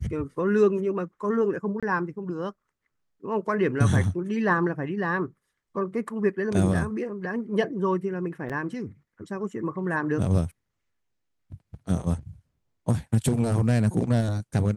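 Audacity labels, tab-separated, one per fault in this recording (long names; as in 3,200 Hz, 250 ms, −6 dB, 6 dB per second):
1.800000	1.830000	drop-out 26 ms
8.490000	8.500000	drop-out 7 ms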